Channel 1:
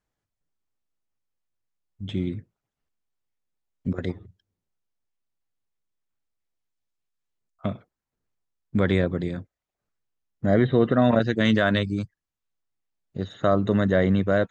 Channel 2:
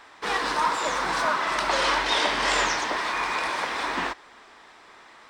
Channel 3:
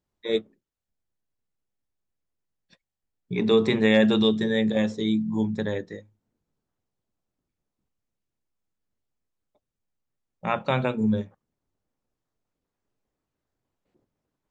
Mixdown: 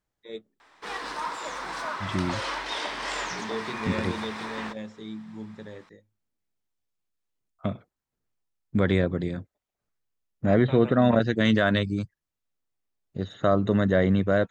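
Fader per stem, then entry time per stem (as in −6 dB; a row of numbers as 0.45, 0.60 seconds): −1.0, −8.5, −14.0 decibels; 0.00, 0.60, 0.00 seconds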